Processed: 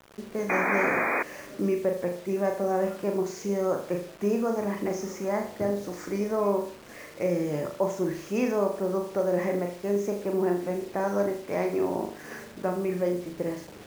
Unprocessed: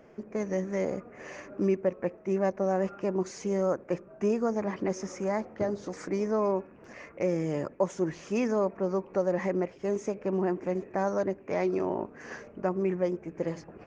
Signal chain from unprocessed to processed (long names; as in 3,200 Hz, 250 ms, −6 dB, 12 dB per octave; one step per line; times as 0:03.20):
flutter between parallel walls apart 6.8 metres, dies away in 0.47 s
sound drawn into the spectrogram noise, 0:00.49–0:01.23, 230–2,500 Hz −26 dBFS
bit reduction 8 bits